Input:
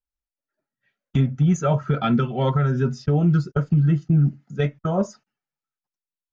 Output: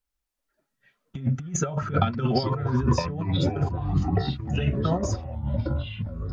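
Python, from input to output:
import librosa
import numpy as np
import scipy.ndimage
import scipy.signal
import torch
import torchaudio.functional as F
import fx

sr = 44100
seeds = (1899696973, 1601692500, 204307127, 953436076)

y = fx.over_compress(x, sr, threshold_db=-25.0, ratio=-0.5)
y = fx.echo_pitch(y, sr, ms=287, semitones=-5, count=3, db_per_echo=-3.0)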